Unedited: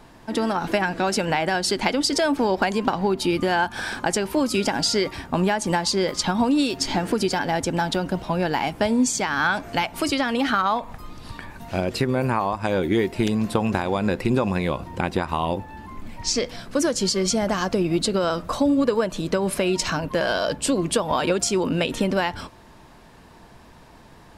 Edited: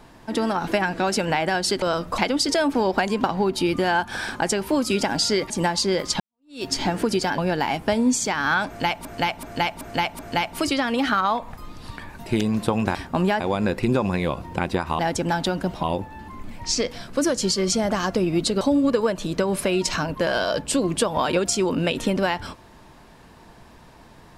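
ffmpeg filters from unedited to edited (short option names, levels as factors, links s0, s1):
-filter_complex "[0:a]asplit=16[s0][s1][s2][s3][s4][s5][s6][s7][s8][s9][s10][s11][s12][s13][s14][s15];[s0]atrim=end=1.822[s16];[s1]atrim=start=18.188:end=18.552[s17];[s2]atrim=start=1.818:end=5.142[s18];[s3]atrim=start=5.588:end=6.29,asetpts=PTS-STARTPTS,afade=t=out:st=0.698:d=0.004:c=hsin[s19];[s4]atrim=start=6.29:end=7.472,asetpts=PTS-STARTPTS,afade=t=in:d=0.43:c=exp[s20];[s5]atrim=start=8.308:end=9.982[s21];[s6]atrim=start=9.598:end=9.982[s22];[s7]atrim=start=9.598:end=9.982[s23];[s8]atrim=start=9.598:end=9.982[s24];[s9]atrim=start=9.598:end=11.672[s25];[s10]atrim=start=13.128:end=13.822[s26];[s11]atrim=start=5.138:end=5.592[s27];[s12]atrim=start=13.818:end=15.412[s28];[s13]atrim=start=7.468:end=8.312[s29];[s14]atrim=start=15.408:end=18.192[s30];[s15]atrim=start=18.548[s31];[s16][s17]acrossfade=d=0.004:c1=hsin:c2=hsin[s32];[s32][s18]acrossfade=d=0.004:c1=hsin:c2=hsin[s33];[s19][s20]concat=n=2:v=0:a=1[s34];[s33][s34]acrossfade=d=0.004:c1=hsin:c2=hsin[s35];[s35][s21]acrossfade=d=0.004:c1=hsin:c2=hsin[s36];[s36][s22]acrossfade=d=0.004:c1=hsin:c2=hsin[s37];[s37][s23]acrossfade=d=0.004:c1=hsin:c2=hsin[s38];[s38][s24]acrossfade=d=0.004:c1=hsin:c2=hsin[s39];[s39][s25]acrossfade=d=0.004:c1=hsin:c2=hsin[s40];[s40][s26]acrossfade=d=0.004:c1=hsin:c2=hsin[s41];[s41][s27]acrossfade=d=0.004:c1=hsin:c2=hsin[s42];[s42][s28]acrossfade=d=0.004:c1=hsin:c2=hsin[s43];[s43][s29]acrossfade=d=0.004:c1=hsin:c2=hsin[s44];[s44][s30]acrossfade=d=0.004:c1=hsin:c2=hsin[s45];[s45][s31]acrossfade=d=0.004:c1=hsin:c2=hsin"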